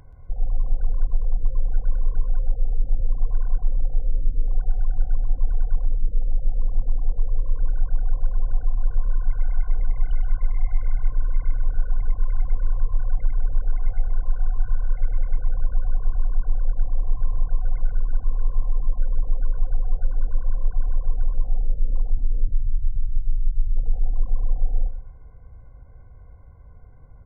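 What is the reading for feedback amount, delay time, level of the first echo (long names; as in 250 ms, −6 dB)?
27%, 126 ms, −10.5 dB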